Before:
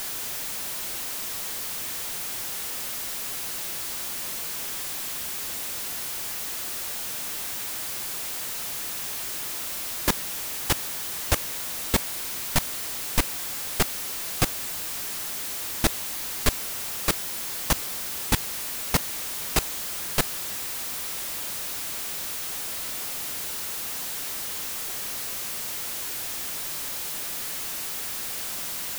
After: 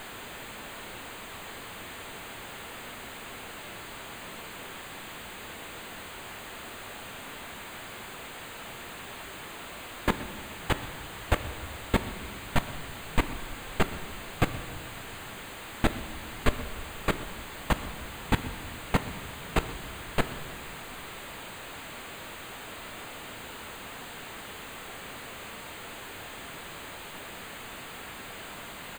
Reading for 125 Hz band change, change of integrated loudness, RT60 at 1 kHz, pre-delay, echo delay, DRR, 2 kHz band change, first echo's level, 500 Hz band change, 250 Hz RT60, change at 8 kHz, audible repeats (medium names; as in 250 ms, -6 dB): +0.5 dB, -8.0 dB, 1.4 s, 4 ms, 126 ms, 10.5 dB, -1.5 dB, -19.5 dB, +0.5 dB, 2.5 s, -15.5 dB, 1